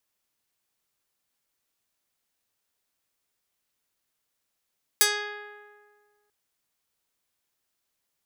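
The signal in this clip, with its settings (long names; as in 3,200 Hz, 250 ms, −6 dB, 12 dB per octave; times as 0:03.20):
Karplus-Strong string G#4, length 1.29 s, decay 1.76 s, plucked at 0.3, medium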